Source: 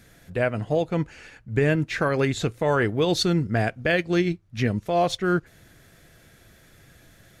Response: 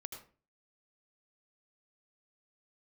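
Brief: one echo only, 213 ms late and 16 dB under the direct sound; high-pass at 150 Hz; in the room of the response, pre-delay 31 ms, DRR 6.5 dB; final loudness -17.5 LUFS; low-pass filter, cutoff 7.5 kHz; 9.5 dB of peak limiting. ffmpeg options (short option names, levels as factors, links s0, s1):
-filter_complex "[0:a]highpass=150,lowpass=7500,alimiter=limit=0.106:level=0:latency=1,aecho=1:1:213:0.158,asplit=2[s0][s1];[1:a]atrim=start_sample=2205,adelay=31[s2];[s1][s2]afir=irnorm=-1:irlink=0,volume=0.668[s3];[s0][s3]amix=inputs=2:normalize=0,volume=3.98"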